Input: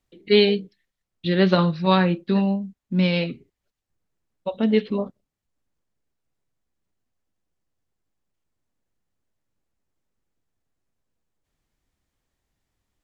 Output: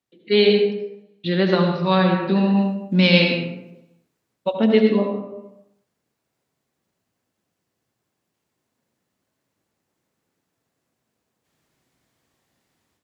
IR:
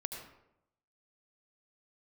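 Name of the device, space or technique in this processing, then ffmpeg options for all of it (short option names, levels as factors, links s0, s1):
far laptop microphone: -filter_complex "[1:a]atrim=start_sample=2205[s0];[0:a][s0]afir=irnorm=-1:irlink=0,highpass=140,dynaudnorm=f=240:g=3:m=4.47,asplit=3[s1][s2][s3];[s1]afade=t=out:st=2.56:d=0.02[s4];[s2]adynamicequalizer=threshold=0.0251:dfrequency=1900:dqfactor=0.7:tfrequency=1900:tqfactor=0.7:attack=5:release=100:ratio=0.375:range=3:mode=boostabove:tftype=highshelf,afade=t=in:st=2.56:d=0.02,afade=t=out:st=4.51:d=0.02[s5];[s3]afade=t=in:st=4.51:d=0.02[s6];[s4][s5][s6]amix=inputs=3:normalize=0,volume=0.75"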